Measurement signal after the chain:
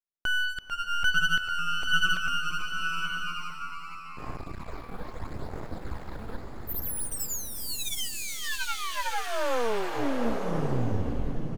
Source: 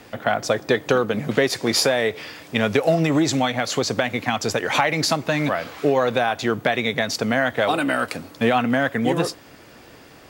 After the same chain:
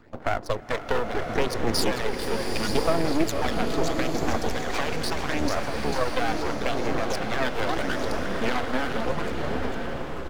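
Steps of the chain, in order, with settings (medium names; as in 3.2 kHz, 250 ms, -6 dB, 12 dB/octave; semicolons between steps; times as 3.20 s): local Wiener filter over 15 samples; frequency-shifting echo 445 ms, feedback 59%, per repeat -84 Hz, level -6.5 dB; dynamic bell 130 Hz, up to -5 dB, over -37 dBFS, Q 1.4; phase shifter stages 12, 0.76 Hz, lowest notch 100–3600 Hz; half-wave rectifier; swelling reverb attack 1010 ms, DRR 4 dB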